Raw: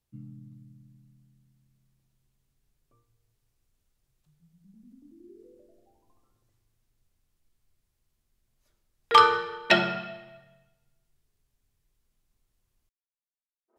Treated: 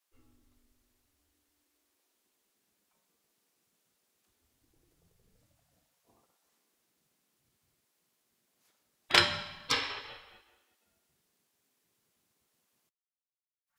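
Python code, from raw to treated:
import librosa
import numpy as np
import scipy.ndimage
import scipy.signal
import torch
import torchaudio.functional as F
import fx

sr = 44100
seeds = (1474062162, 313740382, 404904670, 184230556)

y = fx.spec_gate(x, sr, threshold_db=-20, keep='weak')
y = y * 10.0 ** (5.5 / 20.0)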